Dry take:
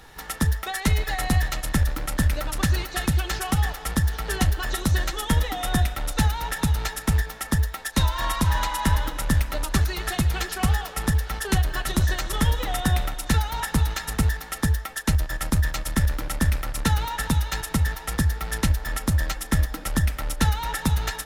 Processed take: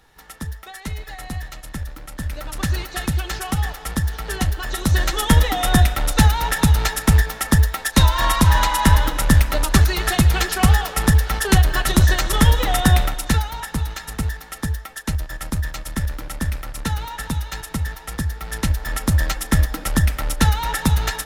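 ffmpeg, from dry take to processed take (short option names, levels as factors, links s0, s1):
-af "volume=5.31,afade=t=in:st=2.16:d=0.57:silence=0.375837,afade=t=in:st=4.7:d=0.5:silence=0.446684,afade=t=out:st=12.94:d=0.65:silence=0.334965,afade=t=in:st=18.37:d=0.84:silence=0.446684"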